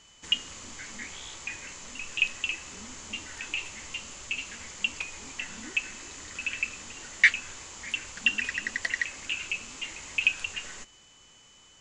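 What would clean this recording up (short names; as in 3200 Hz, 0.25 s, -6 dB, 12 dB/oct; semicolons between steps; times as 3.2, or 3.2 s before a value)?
notch 3000 Hz, Q 30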